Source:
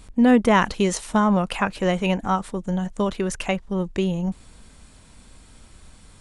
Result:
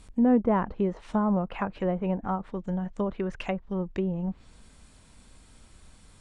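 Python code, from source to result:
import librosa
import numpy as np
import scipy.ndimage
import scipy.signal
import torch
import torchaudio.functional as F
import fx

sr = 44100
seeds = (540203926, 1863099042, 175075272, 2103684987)

y = fx.env_lowpass_down(x, sr, base_hz=920.0, full_db=-18.5)
y = y * 10.0 ** (-5.5 / 20.0)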